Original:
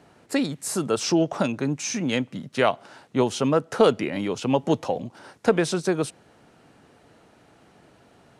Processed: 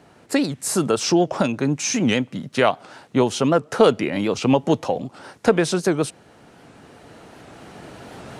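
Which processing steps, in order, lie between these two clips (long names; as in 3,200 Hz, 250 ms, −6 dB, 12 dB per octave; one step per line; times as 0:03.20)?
camcorder AGC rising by 5.9 dB per second
wow of a warped record 78 rpm, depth 160 cents
level +3 dB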